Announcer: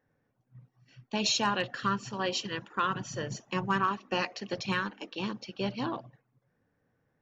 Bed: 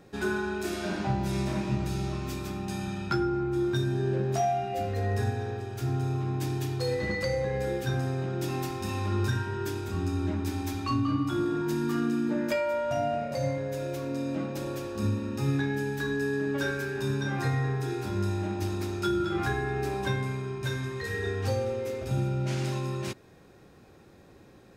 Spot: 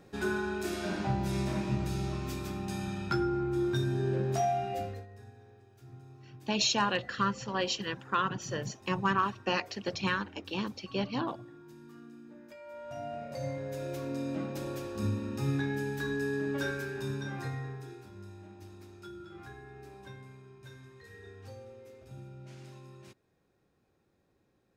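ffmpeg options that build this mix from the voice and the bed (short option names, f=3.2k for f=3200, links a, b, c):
-filter_complex "[0:a]adelay=5350,volume=0dB[a];[1:a]volume=17dB,afade=t=out:st=4.72:d=0.34:silence=0.0944061,afade=t=in:st=12.57:d=1.42:silence=0.105925,afade=t=out:st=16.61:d=1.5:silence=0.16788[b];[a][b]amix=inputs=2:normalize=0"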